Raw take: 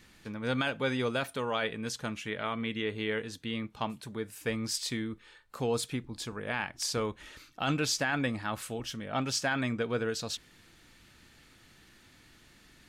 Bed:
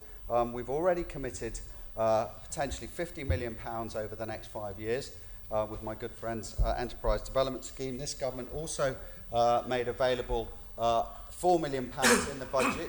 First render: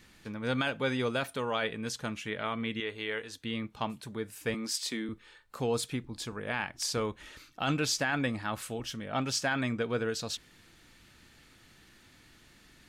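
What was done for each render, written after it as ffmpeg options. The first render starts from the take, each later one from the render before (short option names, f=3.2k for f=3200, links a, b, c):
-filter_complex "[0:a]asettb=1/sr,asplit=3[a][b][c];[a]atrim=end=2.804[d];[b]atrim=start=2.8:end=3.44,asetpts=PTS-STARTPTS,afade=t=in:d=0.004:c=qsin,afade=t=out:st=0.636:d=0.004:c=qsin,equalizer=f=160:t=o:w=2:g=-12[e];[c]atrim=start=3.436[f];[d][e]acrossfade=d=0.004:c1=hsin:c2=qsin[g];[g][f]acrossfade=d=0.004:c1=qsin:c2=hsin,asettb=1/sr,asplit=3[h][i][j];[h]atrim=end=4.544[k];[i]atrim=start=4.54:end=5.09,asetpts=PTS-STARTPTS,afade=t=in:d=0.004:c=qsin,afade=t=out:st=0.546:d=0.004:c=qsin,highpass=f=200:w=0.5412,highpass=f=200:w=1.3066[l];[j]atrim=start=5.086[m];[k][l]acrossfade=d=0.004:c1=hsin:c2=qsin[n];[n][m]acrossfade=d=0.004:c1=qsin:c2=hsin"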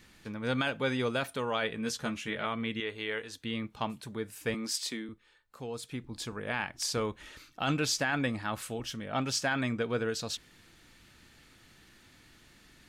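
-filter_complex "[0:a]asettb=1/sr,asplit=3[a][b][c];[a]atrim=end=1.764[d];[b]atrim=start=1.76:end=2.46,asetpts=PTS-STARTPTS,afade=t=in:d=0.004:c=qsin,afade=t=out:st=0.696:d=0.004:c=qsin,asplit=2[e][f];[f]adelay=13,volume=-4.5dB[g];[e][g]amix=inputs=2:normalize=0,atrim=end_sample=30870[h];[c]atrim=start=2.456[i];[d][h]acrossfade=d=0.004:c1=hsin:c2=qsin[j];[j][i]acrossfade=d=0.004:c1=qsin:c2=hsin,asplit=3[k][l][m];[k]atrim=end=5.17,asetpts=PTS-STARTPTS,afade=t=out:st=4.83:d=0.34:silence=0.354813[n];[l]atrim=start=5.17:end=5.81,asetpts=PTS-STARTPTS,volume=-9dB[o];[m]atrim=start=5.81,asetpts=PTS-STARTPTS,afade=t=in:d=0.34:silence=0.354813[p];[n][o][p]concat=n=3:v=0:a=1"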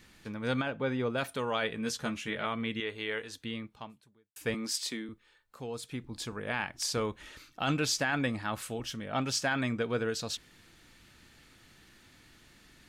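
-filter_complex "[0:a]asplit=3[a][b][c];[a]afade=t=out:st=0.6:d=0.02[d];[b]lowpass=f=1.3k:p=1,afade=t=in:st=0.6:d=0.02,afade=t=out:st=1.17:d=0.02[e];[c]afade=t=in:st=1.17:d=0.02[f];[d][e][f]amix=inputs=3:normalize=0,asplit=2[g][h];[g]atrim=end=4.36,asetpts=PTS-STARTPTS,afade=t=out:st=3.38:d=0.98:c=qua[i];[h]atrim=start=4.36,asetpts=PTS-STARTPTS,afade=t=in:d=0.004:c=hsin[j];[i][j]concat=n=2:v=0:a=1"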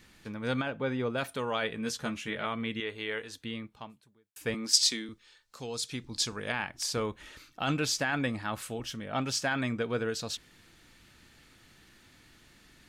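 -filter_complex "[0:a]asettb=1/sr,asplit=3[a][b][c];[a]atrim=end=4.734[d];[b]atrim=start=4.73:end=6.52,asetpts=PTS-STARTPTS,afade=t=in:d=0.004:c=qsin,afade=t=out:st=1.786:d=0.004:c=qsin,equalizer=f=5.5k:w=0.75:g=13.5[e];[c]atrim=start=6.516[f];[d][e]acrossfade=d=0.004:c1=hsin:c2=qsin[g];[g][f]acrossfade=d=0.004:c1=qsin:c2=hsin"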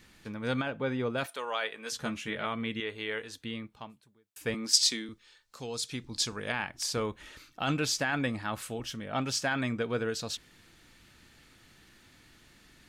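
-filter_complex "[0:a]asettb=1/sr,asplit=3[a][b][c];[a]atrim=end=1.264[d];[b]atrim=start=1.26:end=1.92,asetpts=PTS-STARTPTS,afade=t=in:d=0.004:c=qsin,afade=t=out:st=0.656:d=0.004:c=qsin,highpass=550[e];[c]atrim=start=1.916[f];[d][e]acrossfade=d=0.004:c1=hsin:c2=qsin[g];[g][f]acrossfade=d=0.004:c1=qsin:c2=hsin"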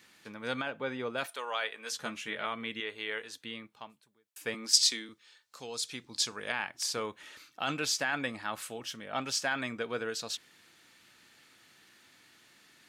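-af "highpass=120,lowshelf=f=340:g=-10.5"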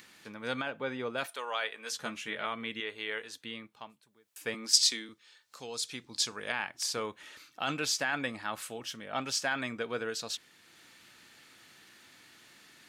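-af "acompressor=mode=upward:threshold=-51dB:ratio=2.5"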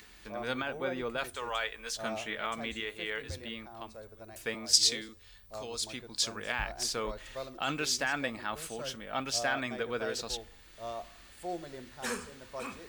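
-filter_complex "[1:a]volume=-12dB[a];[0:a][a]amix=inputs=2:normalize=0"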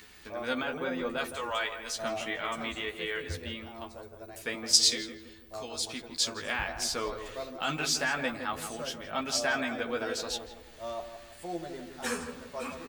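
-filter_complex "[0:a]asplit=2[a][b];[b]adelay=12,volume=-3dB[c];[a][c]amix=inputs=2:normalize=0,asplit=2[d][e];[e]adelay=164,lowpass=f=1.4k:p=1,volume=-8dB,asplit=2[f][g];[g]adelay=164,lowpass=f=1.4k:p=1,volume=0.46,asplit=2[h][i];[i]adelay=164,lowpass=f=1.4k:p=1,volume=0.46,asplit=2[j][k];[k]adelay=164,lowpass=f=1.4k:p=1,volume=0.46,asplit=2[l][m];[m]adelay=164,lowpass=f=1.4k:p=1,volume=0.46[n];[d][f][h][j][l][n]amix=inputs=6:normalize=0"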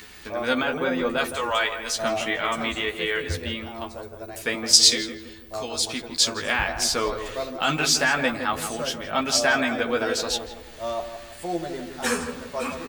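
-af "volume=8.5dB,alimiter=limit=-1dB:level=0:latency=1"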